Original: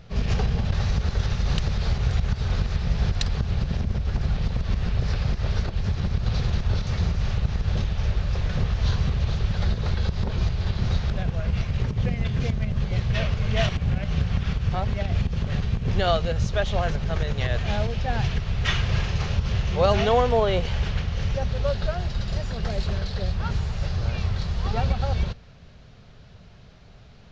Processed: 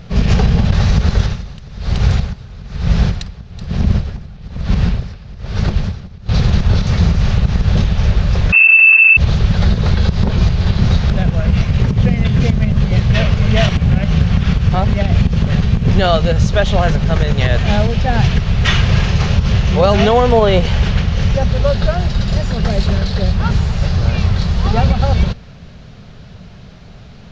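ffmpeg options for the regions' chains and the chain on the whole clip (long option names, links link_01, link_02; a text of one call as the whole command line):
ffmpeg -i in.wav -filter_complex "[0:a]asettb=1/sr,asplit=3[link_01][link_02][link_03];[link_01]atrim=end=1.164[link_04];[link_02]atrim=start=1.16:end=6.29,asetpts=PTS-STARTPTS,afade=type=in:duration=0.004:curve=qsin,afade=type=out:start_time=5.126:duration=0.004:curve=qsin,aecho=1:1:377:0.447,atrim=end_sample=226233,aeval=exprs='val(0)*pow(10,-22*(0.5-0.5*cos(2*PI*1.1*n/s))/20)':channel_layout=same[link_05];[link_03]atrim=start=6.286[link_06];[link_04][link_05]acrossfade=duration=0.004:curve1=hsin:curve2=qsin[link_07];[link_07][link_06]acrossfade=duration=0.004:curve1=qsin:curve2=hsin,asettb=1/sr,asplit=3[link_08][link_09][link_10];[link_08]atrim=end=8.524[link_11];[link_09]atrim=start=8.52:end=9.17,asetpts=PTS-STARTPTS,afade=type=in:duration=0.004:curve=qsin,afade=type=out:start_time=0.646:duration=0.004:curve=qsin,aemphasis=mode=reproduction:type=bsi,lowpass=frequency=2300:width_type=q:width=0.5098,lowpass=frequency=2300:width_type=q:width=0.6013,lowpass=frequency=2300:width_type=q:width=0.9,lowpass=frequency=2300:width_type=q:width=2.563,afreqshift=-2700[link_12];[link_10]atrim=start=9.166[link_13];[link_11][link_12]acrossfade=duration=0.004:curve1=hsin:curve2=qsin[link_14];[link_14][link_13]acrossfade=duration=0.004:curve1=qsin:curve2=hsin,equalizer=frequency=190:width_type=o:width=0.8:gain=5,alimiter=level_in=11.5dB:limit=-1dB:release=50:level=0:latency=1,volume=-1dB" out.wav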